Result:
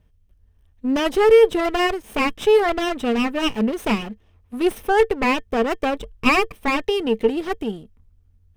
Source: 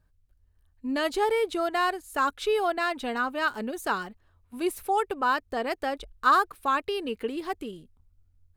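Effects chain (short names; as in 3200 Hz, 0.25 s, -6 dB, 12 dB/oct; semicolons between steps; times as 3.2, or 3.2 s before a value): minimum comb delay 0.34 ms; high shelf 3700 Hz -6.5 dB; small resonant body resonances 210/450/1800/3200 Hz, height 7 dB, ringing for 95 ms; gain +8.5 dB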